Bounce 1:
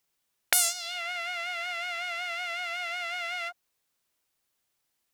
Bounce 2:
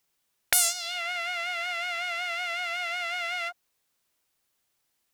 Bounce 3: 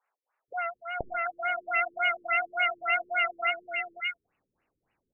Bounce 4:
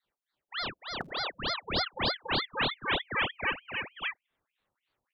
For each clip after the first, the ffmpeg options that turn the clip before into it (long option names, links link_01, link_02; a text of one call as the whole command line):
ffmpeg -i in.wav -af "acontrast=76,volume=-4.5dB" out.wav
ffmpeg -i in.wav -filter_complex "[0:a]acrossover=split=630|1900[link_01][link_02][link_03];[link_01]adelay=480[link_04];[link_03]adelay=740[link_05];[link_04][link_02][link_05]amix=inputs=3:normalize=0,afftfilt=real='re*lt(b*sr/1024,460*pow(3000/460,0.5+0.5*sin(2*PI*3.5*pts/sr)))':imag='im*lt(b*sr/1024,460*pow(3000/460,0.5+0.5*sin(2*PI*3.5*pts/sr)))':win_size=1024:overlap=0.75,volume=9dB" out.wav
ffmpeg -i in.wav -filter_complex "[0:a]acrossover=split=120|1400[link_01][link_02][link_03];[link_01]acrusher=bits=3:mode=log:mix=0:aa=0.000001[link_04];[link_04][link_02][link_03]amix=inputs=3:normalize=0,aeval=exprs='val(0)*sin(2*PI*1500*n/s+1500*0.9/3.3*sin(2*PI*3.3*n/s))':channel_layout=same" out.wav